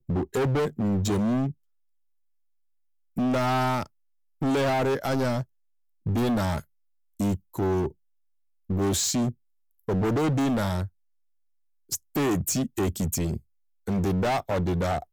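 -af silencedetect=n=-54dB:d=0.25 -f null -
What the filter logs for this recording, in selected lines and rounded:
silence_start: 1.54
silence_end: 3.16 | silence_duration: 1.63
silence_start: 3.87
silence_end: 4.41 | silence_duration: 0.54
silence_start: 5.44
silence_end: 6.06 | silence_duration: 0.62
silence_start: 6.64
silence_end: 7.19 | silence_duration: 0.55
silence_start: 7.92
silence_end: 8.69 | silence_duration: 0.77
silence_start: 9.34
silence_end: 9.71 | silence_duration: 0.37
silence_start: 10.89
silence_end: 11.89 | silence_duration: 1.00
silence_start: 13.42
silence_end: 13.87 | silence_duration: 0.45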